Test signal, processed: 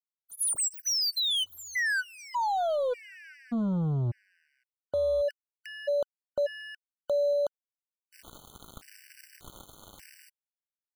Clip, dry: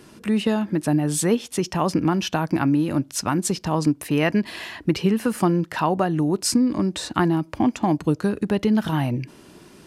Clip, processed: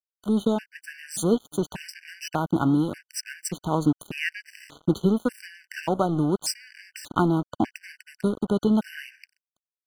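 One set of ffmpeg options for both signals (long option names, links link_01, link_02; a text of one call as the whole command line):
ffmpeg -i in.wav -filter_complex "[0:a]asplit=2[link_01][link_02];[link_02]adelay=583.1,volume=-21dB,highshelf=frequency=4000:gain=-13.1[link_03];[link_01][link_03]amix=inputs=2:normalize=0,aeval=exprs='sgn(val(0))*max(abs(val(0))-0.0237,0)':channel_layout=same,afftfilt=real='re*gt(sin(2*PI*0.85*pts/sr)*(1-2*mod(floor(b*sr/1024/1500),2)),0)':imag='im*gt(sin(2*PI*0.85*pts/sr)*(1-2*mod(floor(b*sr/1024/1500),2)),0)':win_size=1024:overlap=0.75" out.wav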